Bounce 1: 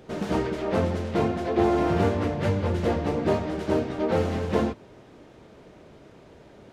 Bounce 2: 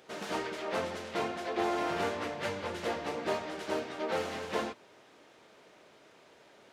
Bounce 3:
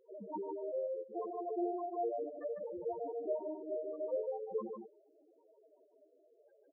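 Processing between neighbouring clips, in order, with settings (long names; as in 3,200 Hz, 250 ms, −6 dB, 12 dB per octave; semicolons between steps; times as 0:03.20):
high-pass filter 1,300 Hz 6 dB per octave
spectral peaks only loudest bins 2; single-tap delay 150 ms −5 dB; level +1.5 dB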